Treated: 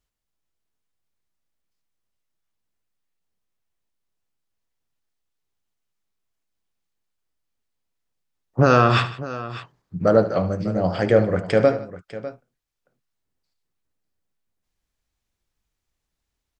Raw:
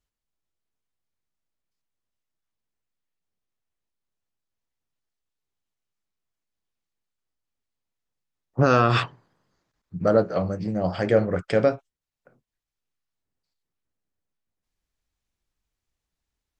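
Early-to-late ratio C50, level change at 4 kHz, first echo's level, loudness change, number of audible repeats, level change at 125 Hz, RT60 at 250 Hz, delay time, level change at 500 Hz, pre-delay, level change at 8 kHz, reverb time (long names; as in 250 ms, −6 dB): no reverb audible, +3.0 dB, −14.5 dB, +3.0 dB, 3, +3.5 dB, no reverb audible, 73 ms, +3.5 dB, no reverb audible, can't be measured, no reverb audible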